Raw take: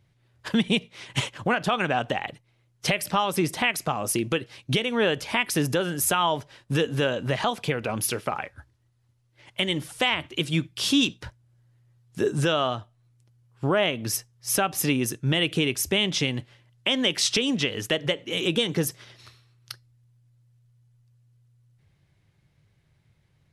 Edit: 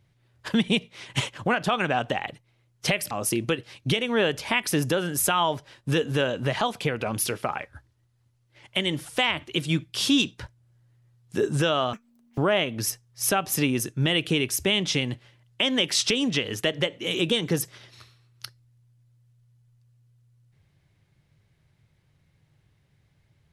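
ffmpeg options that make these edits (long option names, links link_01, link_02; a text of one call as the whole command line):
ffmpeg -i in.wav -filter_complex "[0:a]asplit=4[link_01][link_02][link_03][link_04];[link_01]atrim=end=3.112[link_05];[link_02]atrim=start=3.938:end=12.764[link_06];[link_03]atrim=start=12.76:end=13.64,asetpts=PTS-STARTPTS,asetrate=86877,aresample=44100,atrim=end_sample=19699,asetpts=PTS-STARTPTS[link_07];[link_04]atrim=start=13.636[link_08];[link_05][link_06]acrossfade=duration=0.004:curve1=hsin:curve2=hsin[link_09];[link_09][link_07]acrossfade=duration=0.004:curve1=hsin:curve2=hsin[link_10];[link_10][link_08]acrossfade=duration=0.004:curve1=hsin:curve2=hsin" out.wav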